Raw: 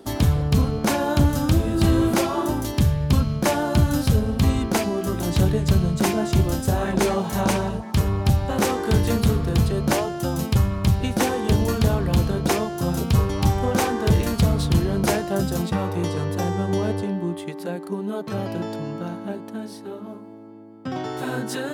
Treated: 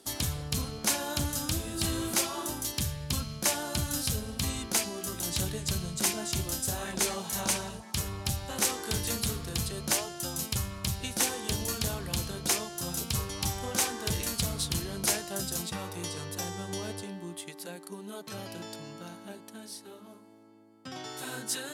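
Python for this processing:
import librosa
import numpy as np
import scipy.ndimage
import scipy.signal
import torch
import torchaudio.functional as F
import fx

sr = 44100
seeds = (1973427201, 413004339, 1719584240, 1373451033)

y = scipy.signal.sosfilt(scipy.signal.butter(2, 11000.0, 'lowpass', fs=sr, output='sos'), x)
y = scipy.signal.lfilter([1.0, -0.9], [1.0], y)
y = F.gain(torch.from_numpy(y), 4.5).numpy()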